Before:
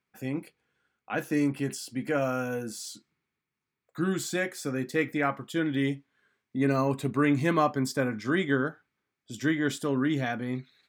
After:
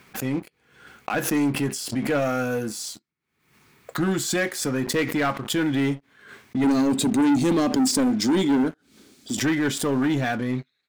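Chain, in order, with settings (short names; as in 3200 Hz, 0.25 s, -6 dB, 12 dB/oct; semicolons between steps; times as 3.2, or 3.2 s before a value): 6.64–9.37 graphic EQ 125/250/1000/2000/4000/8000 Hz -7/+10/-8/-8/+6/+8 dB; sample leveller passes 3; backwards sustainer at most 80 dB/s; gain -4.5 dB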